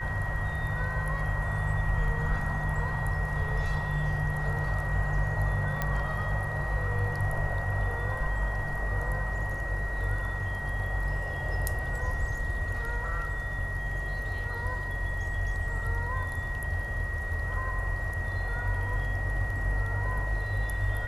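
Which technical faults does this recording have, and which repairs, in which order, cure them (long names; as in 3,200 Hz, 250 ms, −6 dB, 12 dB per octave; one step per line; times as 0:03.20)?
whistle 1,900 Hz −35 dBFS
0:05.82: click −15 dBFS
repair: click removal
notch filter 1,900 Hz, Q 30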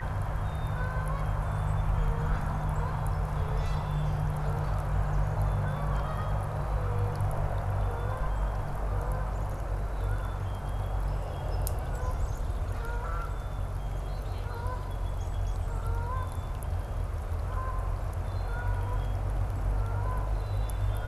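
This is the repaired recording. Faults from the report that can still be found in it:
none of them is left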